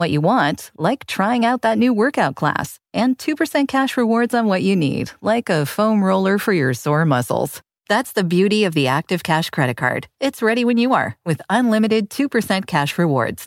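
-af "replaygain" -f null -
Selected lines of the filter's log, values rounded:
track_gain = -0.4 dB
track_peak = 0.515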